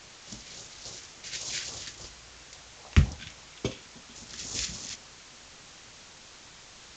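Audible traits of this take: phasing stages 2, 3.6 Hz, lowest notch 750–1900 Hz; a quantiser's noise floor 8-bit, dither triangular; A-law

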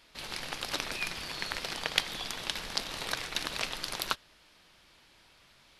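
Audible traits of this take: noise floor -62 dBFS; spectral tilt -2.5 dB/octave

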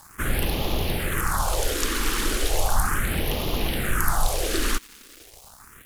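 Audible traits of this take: a quantiser's noise floor 8-bit, dither none; phasing stages 4, 0.36 Hz, lowest notch 110–1500 Hz

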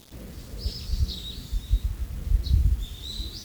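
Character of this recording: a quantiser's noise floor 8-bit, dither none; Opus

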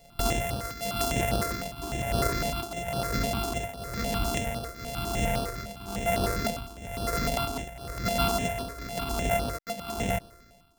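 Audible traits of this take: a buzz of ramps at a fixed pitch in blocks of 64 samples; tremolo triangle 1 Hz, depth 85%; notches that jump at a steady rate 9.9 Hz 340–7000 Hz

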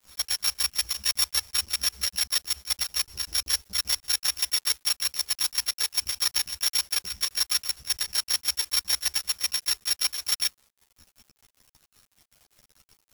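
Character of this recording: a buzz of ramps at a fixed pitch in blocks of 8 samples; chopped level 5.2 Hz, depth 65%, duty 75%; a quantiser's noise floor 8-bit, dither none; a shimmering, thickened sound

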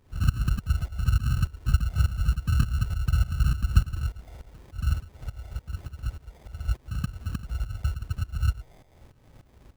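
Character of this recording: tremolo saw up 3.4 Hz, depth 85%; phasing stages 4, 0.88 Hz, lowest notch 270–1100 Hz; aliases and images of a low sample rate 1.4 kHz, jitter 0%

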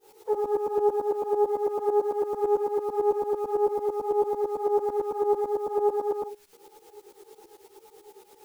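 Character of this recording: a quantiser's noise floor 10-bit, dither triangular; tremolo saw up 9 Hz, depth 95%; a shimmering, thickened sound

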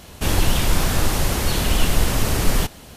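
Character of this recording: noise floor -43 dBFS; spectral tilt -4.0 dB/octave

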